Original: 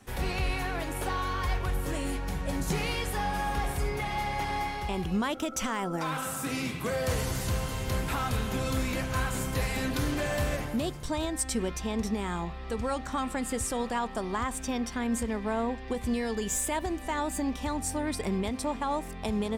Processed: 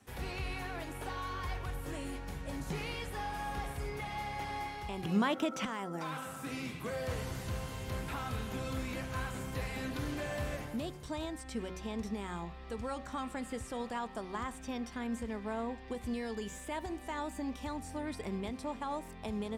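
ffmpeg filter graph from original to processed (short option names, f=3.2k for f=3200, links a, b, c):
-filter_complex "[0:a]asettb=1/sr,asplit=3[a][b][c];[a]atrim=end=5.034[d];[b]atrim=start=5.03:end=5.65,asetpts=PTS-STARTPTS,afade=t=in:d=0.004:c=qsin,afade=t=out:st=0.616:d=0.004:c=qsin,acontrast=82,highpass=f=120:w=0.5412,highpass=f=120:w=1.3066[e];[c]atrim=start=5.646[f];[d][e]acrossfade=d=0.004:c1=hsin:c2=qsin[g];[g][f]acrossfade=d=0.004:c1=qsin:c2=hsin,bandreject=f=185.6:t=h:w=4,bandreject=f=371.2:t=h:w=4,bandreject=f=556.8:t=h:w=4,bandreject=f=742.4:t=h:w=4,bandreject=f=928:t=h:w=4,bandreject=f=1.1136k:t=h:w=4,bandreject=f=1.2992k:t=h:w=4,bandreject=f=1.4848k:t=h:w=4,bandreject=f=1.6704k:t=h:w=4,bandreject=f=1.856k:t=h:w=4,bandreject=f=2.0416k:t=h:w=4,acrossover=split=4000[h][i];[i]acompressor=threshold=-43dB:ratio=4:attack=1:release=60[j];[h][j]amix=inputs=2:normalize=0,highpass=46,volume=-7.5dB"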